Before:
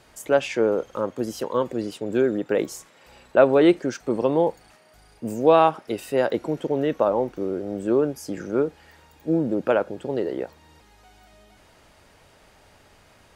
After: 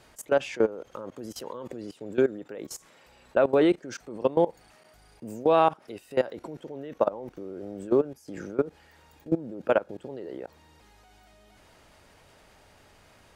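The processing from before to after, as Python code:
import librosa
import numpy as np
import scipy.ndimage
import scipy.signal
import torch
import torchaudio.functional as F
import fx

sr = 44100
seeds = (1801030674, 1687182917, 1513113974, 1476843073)

y = fx.level_steps(x, sr, step_db=19)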